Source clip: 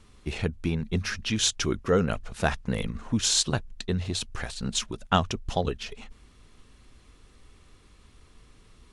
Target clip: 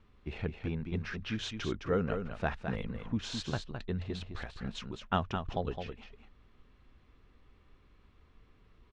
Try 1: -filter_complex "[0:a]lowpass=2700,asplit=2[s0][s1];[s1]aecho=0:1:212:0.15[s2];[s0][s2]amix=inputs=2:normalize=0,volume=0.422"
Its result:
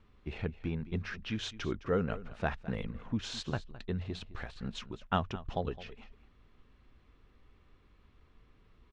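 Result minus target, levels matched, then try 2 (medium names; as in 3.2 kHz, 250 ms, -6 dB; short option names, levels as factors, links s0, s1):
echo-to-direct -9.5 dB
-filter_complex "[0:a]lowpass=2700,asplit=2[s0][s1];[s1]aecho=0:1:212:0.447[s2];[s0][s2]amix=inputs=2:normalize=0,volume=0.422"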